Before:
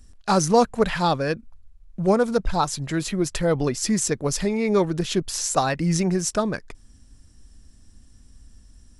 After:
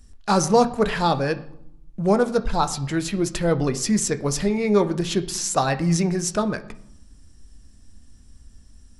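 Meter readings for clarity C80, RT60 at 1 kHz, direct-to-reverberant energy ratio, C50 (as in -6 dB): 18.5 dB, 0.75 s, 9.0 dB, 15.0 dB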